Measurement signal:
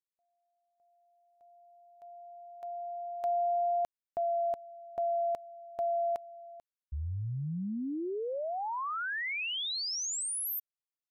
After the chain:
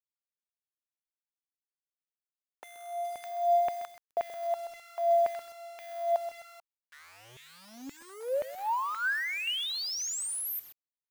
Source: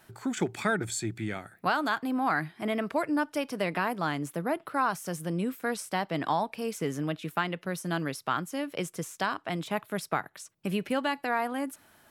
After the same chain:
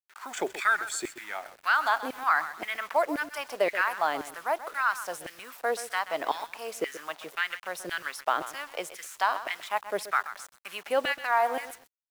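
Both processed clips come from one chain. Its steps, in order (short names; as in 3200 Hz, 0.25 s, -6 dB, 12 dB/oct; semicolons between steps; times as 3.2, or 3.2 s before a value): level-crossing sampler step -45 dBFS; LFO high-pass saw down 1.9 Hz 420–2200 Hz; lo-fi delay 0.129 s, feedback 35%, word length 7-bit, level -12.5 dB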